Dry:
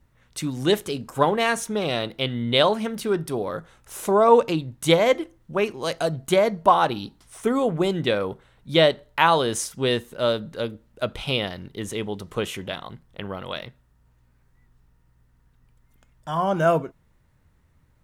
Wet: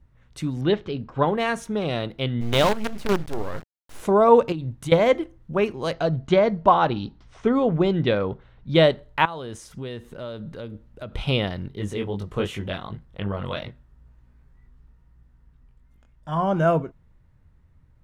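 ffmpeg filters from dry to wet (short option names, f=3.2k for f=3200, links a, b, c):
-filter_complex "[0:a]asettb=1/sr,asplit=3[a][b][c];[a]atrim=end=0.614[d];[b]atrim=start=0.61:end=1.28,asetpts=PTS-STARTPTS,afade=t=in:d=0.004:c=qsin,afade=t=out:st=0.666:d=0.004:c=qsin,lowpass=f=4.3k:w=0.5412,lowpass=f=4.3k:w=1.3066[e];[c]atrim=start=1.276[f];[d][e]acrossfade=d=0.004:c1=hsin:c2=qsin[g];[g][f]acrossfade=d=0.004:c1=qsin:c2=hsin,asplit=3[h][i][j];[h]afade=t=out:st=2.4:d=0.02[k];[i]acrusher=bits=4:dc=4:mix=0:aa=0.000001,afade=t=in:st=2.4:d=0.02,afade=t=out:st=4:d=0.02[l];[j]afade=t=in:st=4:d=0.02[m];[k][l][m]amix=inputs=3:normalize=0,asettb=1/sr,asplit=3[n][o][p];[n]atrim=end=4.524[q];[o]atrim=start=4.52:end=4.92,asetpts=PTS-STARTPTS,afade=t=in:d=0.004:c=qsin,afade=t=out:st=0.396:d=0.004:c=qsin,acompressor=threshold=-28dB:ratio=12:attack=3.2:release=140:knee=1:detection=peak[r];[p]atrim=start=4.916[s];[q][r]acrossfade=d=0.004:c1=hsin:c2=qsin[t];[t][s]acrossfade=d=0.004:c1=qsin:c2=hsin,asplit=3[u][v][w];[u]afade=t=out:st=5.91:d=0.02[x];[v]lowpass=f=5.8k:w=0.5412,lowpass=f=5.8k:w=1.3066,afade=t=in:st=5.91:d=0.02,afade=t=out:st=8.74:d=0.02[y];[w]afade=t=in:st=8.74:d=0.02[z];[x][y][z]amix=inputs=3:normalize=0,asettb=1/sr,asplit=3[aa][ab][ac];[aa]atrim=end=9.254[ad];[ab]atrim=start=9.25:end=11.13,asetpts=PTS-STARTPTS,afade=t=in:d=0.004:c=qsin,afade=t=out:st=1.876:d=0.004:c=qsin,acompressor=threshold=-36dB:ratio=3:attack=3.2:release=140:knee=1:detection=peak[ae];[ac]atrim=start=11.126[af];[ad][ae]acrossfade=d=0.004:c1=hsin:c2=qsin[ag];[ag][af]acrossfade=d=0.004:c1=qsin:c2=hsin,asplit=3[ah][ai][aj];[ah]afade=t=out:st=11.7:d=0.02[ak];[ai]flanger=delay=19.5:depth=2.6:speed=2.7,afade=t=in:st=11.7:d=0.02,afade=t=out:st=16.31:d=0.02[al];[aj]afade=t=in:st=16.31:d=0.02[am];[ak][al][am]amix=inputs=3:normalize=0,lowpass=f=3.3k:p=1,lowshelf=f=160:g=9.5,dynaudnorm=f=440:g=13:m=11.5dB,volume=-2.5dB"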